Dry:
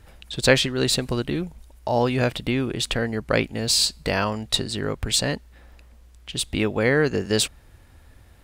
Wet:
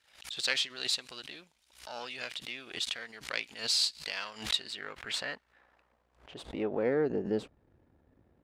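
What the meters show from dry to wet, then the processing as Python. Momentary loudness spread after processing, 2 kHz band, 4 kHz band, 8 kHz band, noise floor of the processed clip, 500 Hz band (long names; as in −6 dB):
16 LU, −11.0 dB, −7.5 dB, −13.0 dB, −73 dBFS, −12.0 dB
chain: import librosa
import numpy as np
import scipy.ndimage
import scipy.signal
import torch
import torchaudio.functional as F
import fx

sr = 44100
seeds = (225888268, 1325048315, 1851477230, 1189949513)

y = np.where(x < 0.0, 10.0 ** (-7.0 / 20.0) * x, x)
y = fx.filter_sweep_bandpass(y, sr, from_hz=3900.0, to_hz=320.0, start_s=4.24, end_s=7.25, q=0.94)
y = fx.pre_swell(y, sr, db_per_s=130.0)
y = y * 10.0 ** (-4.0 / 20.0)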